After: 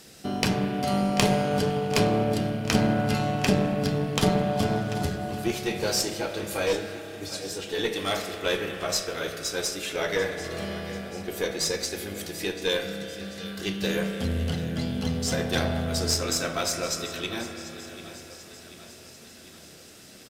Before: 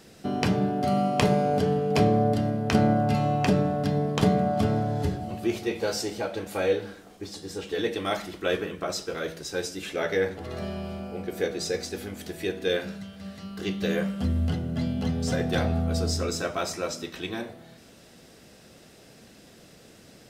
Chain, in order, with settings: treble shelf 2.6 kHz +10 dB; feedback delay 740 ms, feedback 57%, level -15 dB; spring tank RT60 3.8 s, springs 30 ms, chirp 65 ms, DRR 6 dB; Chebyshev shaper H 8 -23 dB, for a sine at 0 dBFS; trim -2 dB

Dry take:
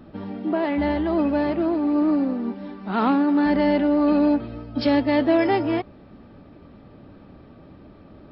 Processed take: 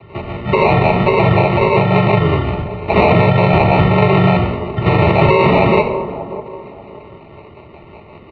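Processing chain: three-band isolator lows -19 dB, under 490 Hz, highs -15 dB, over 2.3 kHz; comb 4.3 ms, depth 79%; dynamic bell 1.3 kHz, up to +4 dB, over -36 dBFS, Q 0.79; transient shaper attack +3 dB, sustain +8 dB; in parallel at -12 dB: overload inside the chain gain 14 dB; on the sum: rotary cabinet horn 5.5 Hz; harmony voices -5 st -2 dB, -3 st -2 dB; sample-rate reducer 1.7 kHz, jitter 0%; on a send: feedback echo behind a band-pass 587 ms, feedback 30%, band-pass 580 Hz, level -15 dB; on the sum: simulated room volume 2700 m³, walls furnished, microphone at 1.9 m; mistuned SSB -110 Hz 150–3400 Hz; loudness maximiser +11 dB; trim -1 dB

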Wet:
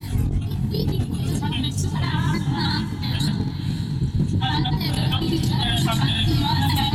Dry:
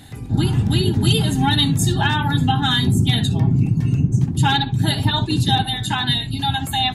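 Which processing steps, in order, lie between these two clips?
tone controls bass +8 dB, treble +3 dB; compressor with a negative ratio -18 dBFS, ratio -0.5; granulator, pitch spread up and down by 3 st; chorus 2.1 Hz, delay 19 ms, depth 4.8 ms; peak limiter -17 dBFS, peak gain reduction 11 dB; echo that smears into a reverb 541 ms, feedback 45%, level -10 dB; reverberation RT60 1.0 s, pre-delay 3 ms, DRR 13.5 dB; trim +4 dB

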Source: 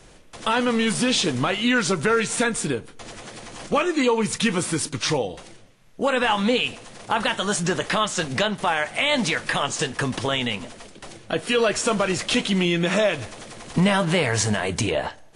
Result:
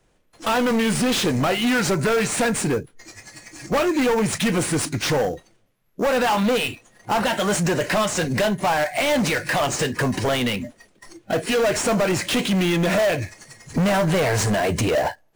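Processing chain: spectral noise reduction 21 dB; dynamic bell 660 Hz, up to +6 dB, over -39 dBFS, Q 2.7; saturation -24 dBFS, distortion -7 dB; in parallel at -6 dB: sample-rate reducer 6.5 kHz, jitter 20%; on the sum: trim +4 dB

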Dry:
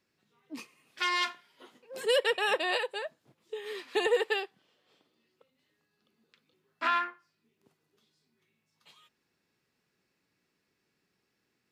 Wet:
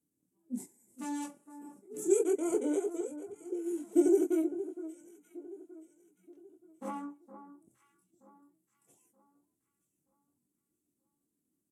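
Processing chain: chorus voices 2, 0.29 Hz, delay 20 ms, depth 3.6 ms; FFT filter 150 Hz 0 dB, 360 Hz +10 dB, 1.9 kHz -21 dB, 5.2 kHz -20 dB, 9.5 kHz +14 dB; spectral noise reduction 6 dB; pitch shift -3.5 st; on a send: echo whose repeats swap between lows and highs 463 ms, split 1.5 kHz, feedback 58%, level -12 dB

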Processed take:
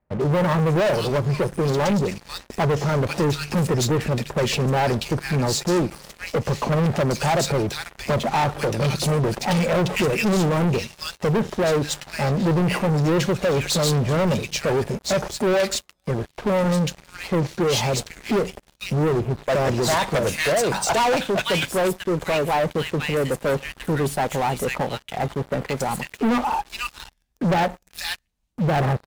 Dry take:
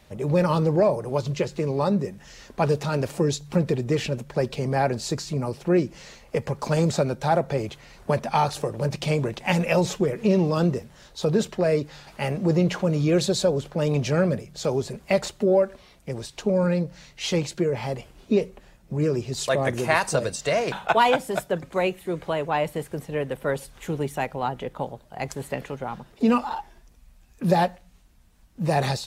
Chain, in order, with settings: bands offset in time lows, highs 490 ms, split 1.8 kHz; waveshaping leveller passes 5; trim -8.5 dB

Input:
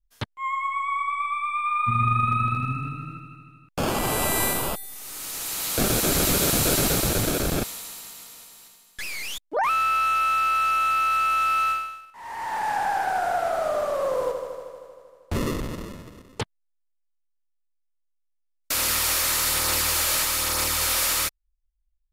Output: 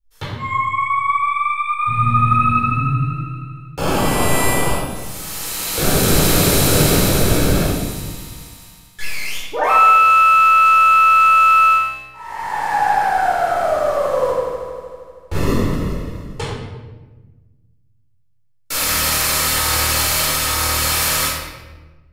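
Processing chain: simulated room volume 880 m³, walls mixed, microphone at 4.3 m; trim -2 dB

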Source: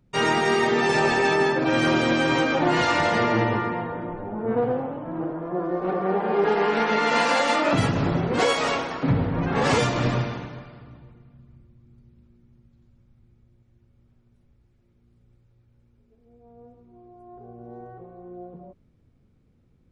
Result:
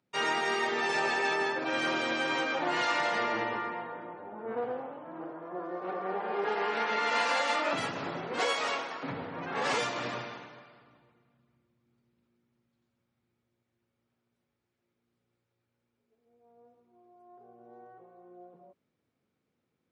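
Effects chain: frequency weighting A; trim -7 dB

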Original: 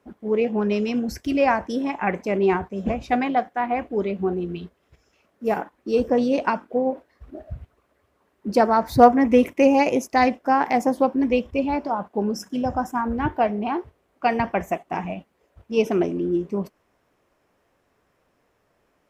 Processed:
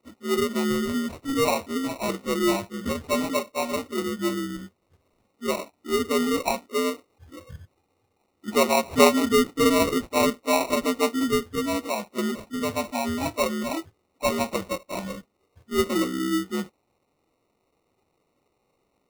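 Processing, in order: frequency axis rescaled in octaves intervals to 78%; sample-and-hold 27×; trim -2 dB

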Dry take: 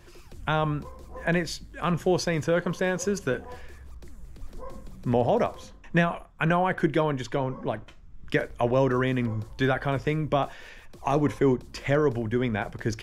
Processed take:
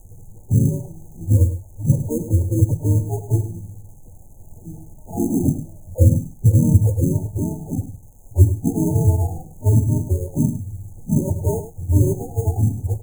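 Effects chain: spectrum inverted on a logarithmic axis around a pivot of 410 Hz; bass shelf 330 Hz +7.5 dB; phase dispersion lows, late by 49 ms, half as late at 830 Hz; added noise brown -54 dBFS; RIAA curve playback; sample-and-hold 29×; 5.44–6.05 s: small resonant body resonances 600/1200/2200/3100 Hz, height 14 dB; crackle 520 per s -32 dBFS; brick-wall FIR band-stop 930–6200 Hz; on a send: delay 104 ms -11.5 dB; on the sum: trim -6 dB

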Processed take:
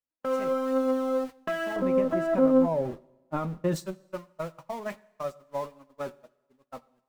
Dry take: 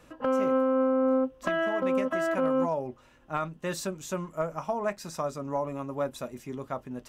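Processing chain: jump at every zero crossing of -34.5 dBFS; 1.76–3.76 s: tilt shelf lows +8.5 dB, about 1.1 kHz; gate -28 dBFS, range -59 dB; flange 1.2 Hz, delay 3.3 ms, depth 3.1 ms, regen +48%; two-slope reverb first 0.84 s, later 2.1 s, from -19 dB, DRR 18.5 dB

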